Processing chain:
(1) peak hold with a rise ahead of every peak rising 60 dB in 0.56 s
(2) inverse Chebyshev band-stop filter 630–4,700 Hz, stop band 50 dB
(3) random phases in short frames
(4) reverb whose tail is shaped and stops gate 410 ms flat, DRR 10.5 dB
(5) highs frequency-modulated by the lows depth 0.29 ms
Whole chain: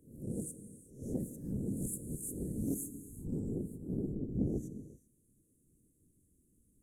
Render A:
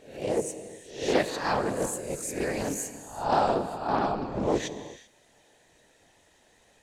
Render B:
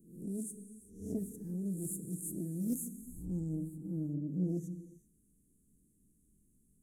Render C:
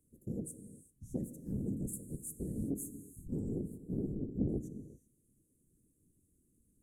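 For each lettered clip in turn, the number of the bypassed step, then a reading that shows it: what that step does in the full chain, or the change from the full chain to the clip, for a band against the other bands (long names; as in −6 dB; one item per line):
2, 500 Hz band +13.0 dB
3, 500 Hz band −3.0 dB
1, 8 kHz band −2.5 dB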